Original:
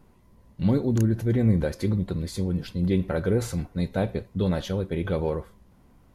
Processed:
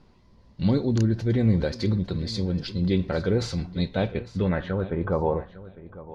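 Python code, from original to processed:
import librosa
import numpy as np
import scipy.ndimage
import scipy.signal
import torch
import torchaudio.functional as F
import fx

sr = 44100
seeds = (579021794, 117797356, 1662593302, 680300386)

y = fx.filter_sweep_lowpass(x, sr, from_hz=4700.0, to_hz=590.0, start_s=3.68, end_s=5.71, q=2.8)
y = fx.echo_feedback(y, sr, ms=853, feedback_pct=21, wet_db=-17)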